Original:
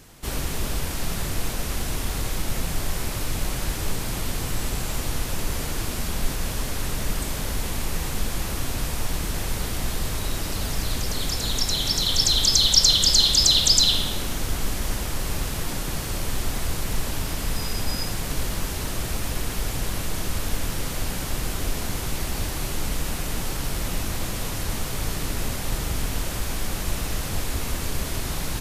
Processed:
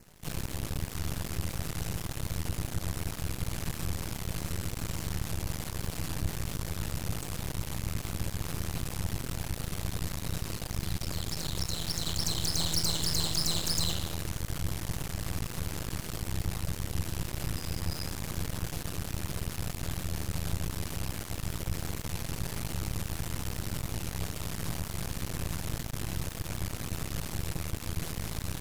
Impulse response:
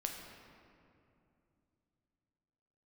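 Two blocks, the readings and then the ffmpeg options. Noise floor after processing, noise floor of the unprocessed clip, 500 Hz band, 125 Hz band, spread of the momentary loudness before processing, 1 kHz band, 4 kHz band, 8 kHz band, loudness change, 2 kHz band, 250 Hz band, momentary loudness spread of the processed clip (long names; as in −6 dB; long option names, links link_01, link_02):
−41 dBFS, −30 dBFS, −8.5 dB, −3.5 dB, 12 LU, −9.0 dB, −13.5 dB, −10.5 dB, −10.0 dB, −9.0 dB, −5.5 dB, 7 LU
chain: -af "aeval=exprs='val(0)*sin(2*PI*82*n/s)':channel_layout=same,aeval=exprs='max(val(0),0)':channel_layout=same,adynamicequalizer=threshold=0.00447:dfrequency=3400:dqfactor=4.3:tfrequency=3400:tqfactor=4.3:attack=5:release=100:ratio=0.375:range=3.5:mode=cutabove:tftype=bell,asoftclip=type=tanh:threshold=-15dB,volume=-2dB"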